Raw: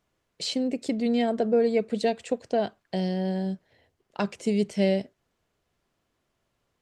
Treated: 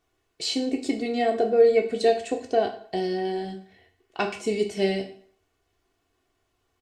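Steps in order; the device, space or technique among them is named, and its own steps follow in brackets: microphone above a desk (comb 2.7 ms, depth 66%; reverb RT60 0.55 s, pre-delay 9 ms, DRR 4 dB); 3.18–4.39 bell 2300 Hz +5 dB 1.2 oct

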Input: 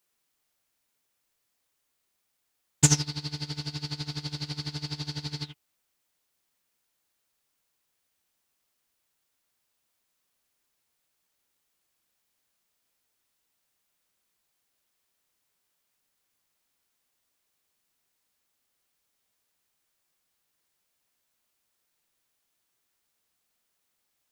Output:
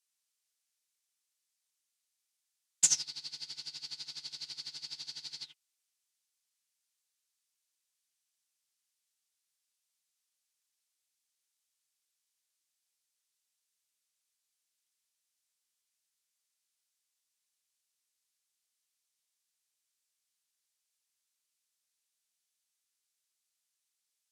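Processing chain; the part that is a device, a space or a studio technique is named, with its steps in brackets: piezo pickup straight into a mixer (LPF 7800 Hz 12 dB/oct; differentiator)

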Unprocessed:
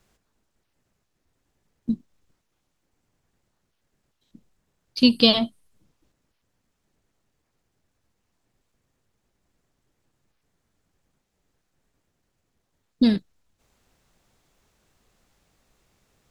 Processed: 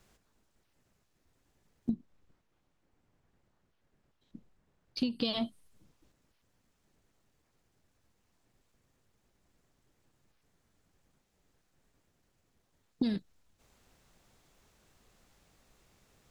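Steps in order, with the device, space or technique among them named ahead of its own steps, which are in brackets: serial compression, leveller first (compressor 2.5:1, threshold -20 dBFS, peak gain reduction 7 dB; compressor 6:1, threshold -28 dBFS, peak gain reduction 11.5 dB); 1.9–5.25 high shelf 4100 Hz -12 dB

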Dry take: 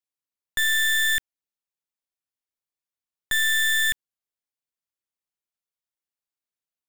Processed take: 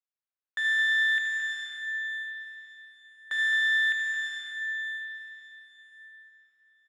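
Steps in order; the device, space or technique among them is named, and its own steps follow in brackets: station announcement (BPF 500–3600 Hz; bell 1500 Hz +6 dB 0.58 oct; loudspeakers at several distances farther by 25 m -9 dB, 75 m -10 dB; reverb RT60 5.1 s, pre-delay 75 ms, DRR 1.5 dB); gain -8.5 dB

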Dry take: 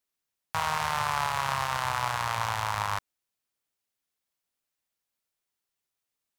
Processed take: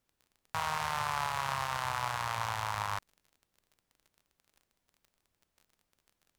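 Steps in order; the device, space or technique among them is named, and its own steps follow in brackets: vinyl LP (crackle 30/s -43 dBFS; pink noise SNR 44 dB); gain -5 dB

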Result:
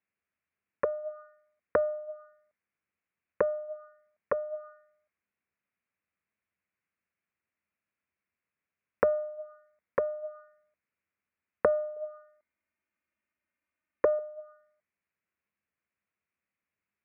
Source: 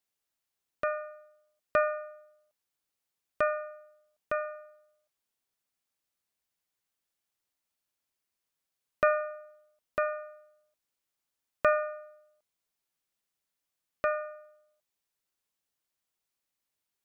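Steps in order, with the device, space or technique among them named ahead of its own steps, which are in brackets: 11.96–14.19 comb 3.3 ms, depth 63%; envelope filter bass rig (envelope low-pass 450–2500 Hz down, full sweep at -31 dBFS; speaker cabinet 71–2000 Hz, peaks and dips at 80 Hz +10 dB, 200 Hz +8 dB, 830 Hz -6 dB)

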